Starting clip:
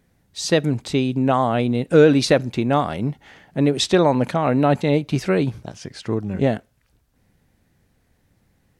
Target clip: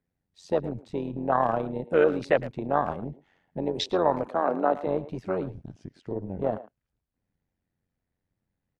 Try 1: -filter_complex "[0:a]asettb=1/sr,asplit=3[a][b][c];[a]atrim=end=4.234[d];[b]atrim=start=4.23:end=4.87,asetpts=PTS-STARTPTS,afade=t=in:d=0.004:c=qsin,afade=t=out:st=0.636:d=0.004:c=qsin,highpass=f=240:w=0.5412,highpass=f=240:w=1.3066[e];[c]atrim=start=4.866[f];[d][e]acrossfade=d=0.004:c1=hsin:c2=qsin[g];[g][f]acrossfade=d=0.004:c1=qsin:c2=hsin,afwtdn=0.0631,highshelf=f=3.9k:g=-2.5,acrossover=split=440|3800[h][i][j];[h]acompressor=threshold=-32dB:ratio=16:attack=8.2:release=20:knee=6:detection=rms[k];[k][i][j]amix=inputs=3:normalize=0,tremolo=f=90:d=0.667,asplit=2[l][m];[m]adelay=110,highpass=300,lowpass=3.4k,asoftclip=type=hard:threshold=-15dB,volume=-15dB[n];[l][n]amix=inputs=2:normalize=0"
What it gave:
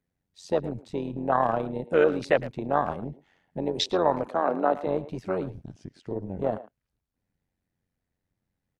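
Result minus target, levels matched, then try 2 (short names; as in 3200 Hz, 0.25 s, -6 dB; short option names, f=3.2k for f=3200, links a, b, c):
8000 Hz band +4.5 dB
-filter_complex "[0:a]asettb=1/sr,asplit=3[a][b][c];[a]atrim=end=4.234[d];[b]atrim=start=4.23:end=4.87,asetpts=PTS-STARTPTS,afade=t=in:d=0.004:c=qsin,afade=t=out:st=0.636:d=0.004:c=qsin,highpass=f=240:w=0.5412,highpass=f=240:w=1.3066[e];[c]atrim=start=4.866[f];[d][e]acrossfade=d=0.004:c1=hsin:c2=qsin[g];[g][f]acrossfade=d=0.004:c1=qsin:c2=hsin,afwtdn=0.0631,highshelf=f=3.9k:g=-9,acrossover=split=440|3800[h][i][j];[h]acompressor=threshold=-32dB:ratio=16:attack=8.2:release=20:knee=6:detection=rms[k];[k][i][j]amix=inputs=3:normalize=0,tremolo=f=90:d=0.667,asplit=2[l][m];[m]adelay=110,highpass=300,lowpass=3.4k,asoftclip=type=hard:threshold=-15dB,volume=-15dB[n];[l][n]amix=inputs=2:normalize=0"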